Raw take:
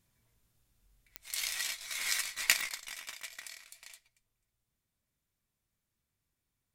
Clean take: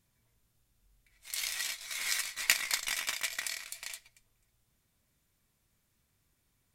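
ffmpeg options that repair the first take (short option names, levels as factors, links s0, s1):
-af "adeclick=t=4,asetnsamples=n=441:p=0,asendcmd='2.69 volume volume 10dB',volume=1"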